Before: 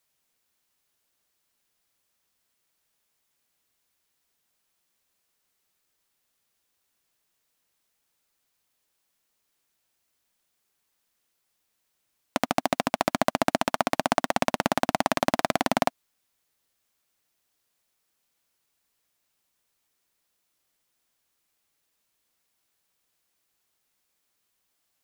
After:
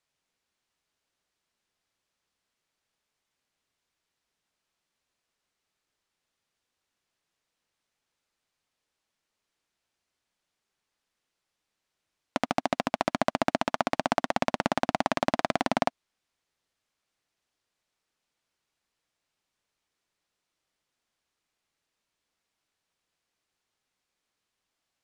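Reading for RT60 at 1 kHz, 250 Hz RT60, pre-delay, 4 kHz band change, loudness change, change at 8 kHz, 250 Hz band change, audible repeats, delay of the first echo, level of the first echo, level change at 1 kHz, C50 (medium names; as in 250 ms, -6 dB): no reverb, no reverb, no reverb, -3.5 dB, -2.5 dB, -7.5 dB, -2.0 dB, no echo, no echo, no echo, -2.5 dB, no reverb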